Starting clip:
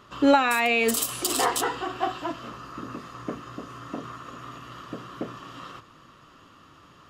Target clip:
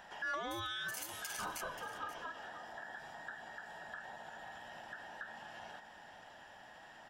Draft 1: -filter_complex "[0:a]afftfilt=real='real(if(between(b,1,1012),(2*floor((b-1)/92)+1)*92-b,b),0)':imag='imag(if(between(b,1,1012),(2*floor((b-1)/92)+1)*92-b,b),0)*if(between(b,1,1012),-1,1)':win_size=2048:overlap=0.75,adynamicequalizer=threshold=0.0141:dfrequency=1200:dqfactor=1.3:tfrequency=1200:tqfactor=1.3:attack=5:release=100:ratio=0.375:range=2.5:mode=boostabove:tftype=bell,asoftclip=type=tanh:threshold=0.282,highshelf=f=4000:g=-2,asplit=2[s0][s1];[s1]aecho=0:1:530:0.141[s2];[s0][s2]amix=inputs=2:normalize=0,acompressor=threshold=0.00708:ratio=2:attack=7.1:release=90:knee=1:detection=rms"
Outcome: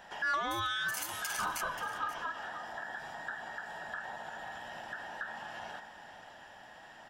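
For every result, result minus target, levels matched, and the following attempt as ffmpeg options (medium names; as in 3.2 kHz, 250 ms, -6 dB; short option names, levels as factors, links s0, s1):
compression: peak gain reduction -5 dB; 500 Hz band -3.0 dB
-filter_complex "[0:a]afftfilt=real='real(if(between(b,1,1012),(2*floor((b-1)/92)+1)*92-b,b),0)':imag='imag(if(between(b,1,1012),(2*floor((b-1)/92)+1)*92-b,b),0)*if(between(b,1,1012),-1,1)':win_size=2048:overlap=0.75,adynamicequalizer=threshold=0.0141:dfrequency=1200:dqfactor=1.3:tfrequency=1200:tqfactor=1.3:attack=5:release=100:ratio=0.375:range=2.5:mode=boostabove:tftype=bell,asoftclip=type=tanh:threshold=0.282,highshelf=f=4000:g=-2,asplit=2[s0][s1];[s1]aecho=0:1:530:0.141[s2];[s0][s2]amix=inputs=2:normalize=0,acompressor=threshold=0.00188:ratio=2:attack=7.1:release=90:knee=1:detection=rms"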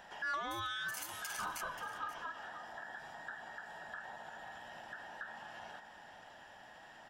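500 Hz band -3.0 dB
-filter_complex "[0:a]afftfilt=real='real(if(between(b,1,1012),(2*floor((b-1)/92)+1)*92-b,b),0)':imag='imag(if(between(b,1,1012),(2*floor((b-1)/92)+1)*92-b,b),0)*if(between(b,1,1012),-1,1)':win_size=2048:overlap=0.75,adynamicequalizer=threshold=0.0141:dfrequency=460:dqfactor=1.3:tfrequency=460:tqfactor=1.3:attack=5:release=100:ratio=0.375:range=2.5:mode=boostabove:tftype=bell,asoftclip=type=tanh:threshold=0.282,highshelf=f=4000:g=-2,asplit=2[s0][s1];[s1]aecho=0:1:530:0.141[s2];[s0][s2]amix=inputs=2:normalize=0,acompressor=threshold=0.00188:ratio=2:attack=7.1:release=90:knee=1:detection=rms"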